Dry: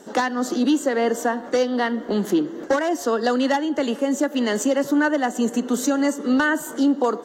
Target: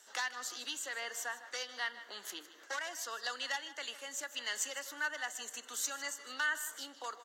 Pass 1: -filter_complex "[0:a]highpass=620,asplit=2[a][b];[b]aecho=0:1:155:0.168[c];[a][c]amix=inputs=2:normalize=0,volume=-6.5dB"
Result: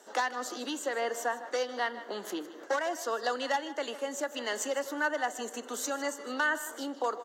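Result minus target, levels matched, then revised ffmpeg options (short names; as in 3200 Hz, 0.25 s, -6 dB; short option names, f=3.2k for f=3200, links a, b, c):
500 Hz band +11.0 dB
-filter_complex "[0:a]highpass=1.8k,asplit=2[a][b];[b]aecho=0:1:155:0.168[c];[a][c]amix=inputs=2:normalize=0,volume=-6.5dB"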